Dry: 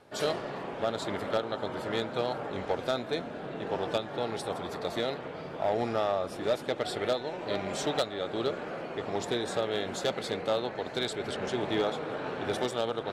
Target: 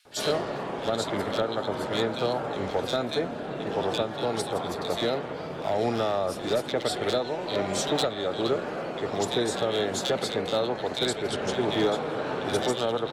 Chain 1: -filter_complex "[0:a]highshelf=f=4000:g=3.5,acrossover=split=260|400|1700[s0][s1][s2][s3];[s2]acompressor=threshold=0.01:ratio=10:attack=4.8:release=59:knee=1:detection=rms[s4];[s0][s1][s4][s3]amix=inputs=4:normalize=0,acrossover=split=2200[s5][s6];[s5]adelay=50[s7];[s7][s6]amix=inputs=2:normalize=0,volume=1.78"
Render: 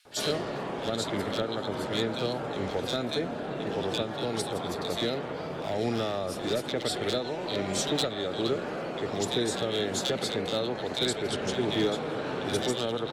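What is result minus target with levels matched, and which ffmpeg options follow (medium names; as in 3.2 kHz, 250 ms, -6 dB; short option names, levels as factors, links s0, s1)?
compression: peak gain reduction +9 dB
-filter_complex "[0:a]highshelf=f=4000:g=3.5,acrossover=split=260|400|1700[s0][s1][s2][s3];[s2]acompressor=threshold=0.0316:ratio=10:attack=4.8:release=59:knee=1:detection=rms[s4];[s0][s1][s4][s3]amix=inputs=4:normalize=0,acrossover=split=2200[s5][s6];[s5]adelay=50[s7];[s7][s6]amix=inputs=2:normalize=0,volume=1.78"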